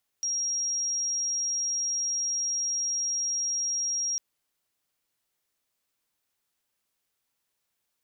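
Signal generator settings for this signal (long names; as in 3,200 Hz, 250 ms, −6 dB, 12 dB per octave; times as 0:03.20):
tone sine 5,630 Hz −26 dBFS 3.95 s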